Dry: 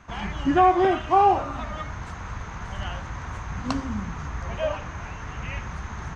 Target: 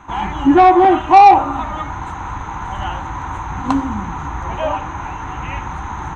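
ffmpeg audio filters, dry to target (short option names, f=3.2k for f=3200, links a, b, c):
-af "superequalizer=6b=2.51:9b=3.55:10b=1.58:14b=0.282,acontrast=53,volume=-1dB"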